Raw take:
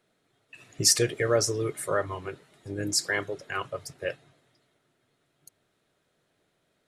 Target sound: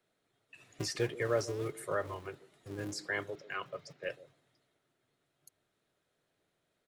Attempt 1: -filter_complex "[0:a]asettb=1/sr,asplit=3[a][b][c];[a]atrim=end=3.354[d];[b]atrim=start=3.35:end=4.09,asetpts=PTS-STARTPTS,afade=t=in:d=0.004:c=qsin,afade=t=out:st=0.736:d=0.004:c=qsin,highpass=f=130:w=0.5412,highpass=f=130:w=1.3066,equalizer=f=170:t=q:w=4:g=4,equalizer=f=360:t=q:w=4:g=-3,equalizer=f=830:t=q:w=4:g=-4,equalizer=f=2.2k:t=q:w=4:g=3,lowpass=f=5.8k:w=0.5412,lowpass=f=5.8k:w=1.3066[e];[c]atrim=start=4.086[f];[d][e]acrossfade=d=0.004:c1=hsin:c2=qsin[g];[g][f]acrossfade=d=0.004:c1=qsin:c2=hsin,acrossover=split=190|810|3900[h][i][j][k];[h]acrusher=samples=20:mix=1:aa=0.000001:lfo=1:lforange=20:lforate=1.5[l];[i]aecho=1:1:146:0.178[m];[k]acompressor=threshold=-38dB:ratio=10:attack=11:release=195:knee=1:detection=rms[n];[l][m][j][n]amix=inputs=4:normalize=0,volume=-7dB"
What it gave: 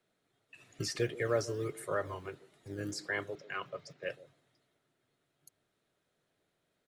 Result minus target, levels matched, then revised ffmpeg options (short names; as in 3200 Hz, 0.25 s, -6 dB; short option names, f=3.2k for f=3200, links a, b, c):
decimation with a swept rate: distortion -12 dB
-filter_complex "[0:a]asettb=1/sr,asplit=3[a][b][c];[a]atrim=end=3.354[d];[b]atrim=start=3.35:end=4.09,asetpts=PTS-STARTPTS,afade=t=in:d=0.004:c=qsin,afade=t=out:st=0.736:d=0.004:c=qsin,highpass=f=130:w=0.5412,highpass=f=130:w=1.3066,equalizer=f=170:t=q:w=4:g=4,equalizer=f=360:t=q:w=4:g=-3,equalizer=f=830:t=q:w=4:g=-4,equalizer=f=2.2k:t=q:w=4:g=3,lowpass=f=5.8k:w=0.5412,lowpass=f=5.8k:w=1.3066[e];[c]atrim=start=4.086[f];[d][e]acrossfade=d=0.004:c1=hsin:c2=qsin[g];[g][f]acrossfade=d=0.004:c1=qsin:c2=hsin,acrossover=split=190|810|3900[h][i][j][k];[h]acrusher=samples=68:mix=1:aa=0.000001:lfo=1:lforange=68:lforate=1.5[l];[i]aecho=1:1:146:0.178[m];[k]acompressor=threshold=-38dB:ratio=10:attack=11:release=195:knee=1:detection=rms[n];[l][m][j][n]amix=inputs=4:normalize=0,volume=-7dB"